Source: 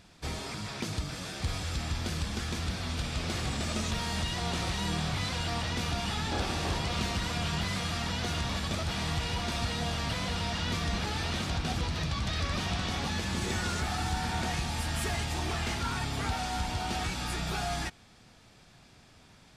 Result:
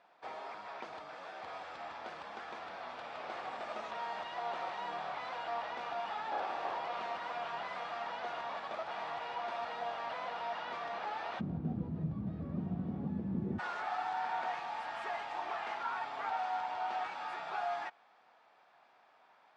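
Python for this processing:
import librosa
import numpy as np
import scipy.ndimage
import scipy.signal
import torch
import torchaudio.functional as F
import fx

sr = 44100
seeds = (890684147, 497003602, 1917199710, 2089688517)

y = fx.ladder_bandpass(x, sr, hz=fx.steps((0.0, 910.0), (11.39, 220.0), (13.58, 1000.0)), resonance_pct=35)
y = y * 10.0 ** (9.0 / 20.0)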